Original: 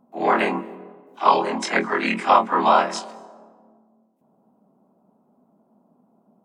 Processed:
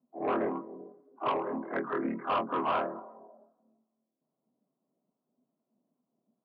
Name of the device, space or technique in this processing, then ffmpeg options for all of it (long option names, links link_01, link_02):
guitar amplifier with harmonic tremolo: -filter_complex "[0:a]lowpass=frequency=1400:width=0.5412,lowpass=frequency=1400:width=1.3066,afftdn=noise_reduction=13:noise_floor=-40,highpass=130,acrossover=split=850[link_01][link_02];[link_01]aeval=exprs='val(0)*(1-0.5/2+0.5/2*cos(2*PI*2.4*n/s))':channel_layout=same[link_03];[link_02]aeval=exprs='val(0)*(1-0.5/2-0.5/2*cos(2*PI*2.4*n/s))':channel_layout=same[link_04];[link_03][link_04]amix=inputs=2:normalize=0,asoftclip=type=tanh:threshold=-17dB,lowpass=3500,highpass=81,equalizer=frequency=140:width_type=q:width=4:gain=8,equalizer=frequency=200:width_type=q:width=4:gain=-8,equalizer=frequency=290:width_type=q:width=4:gain=3,equalizer=frequency=850:width_type=q:width=4:gain=-8,lowpass=frequency=4000:width=0.5412,lowpass=frequency=4000:width=1.3066,volume=-4dB"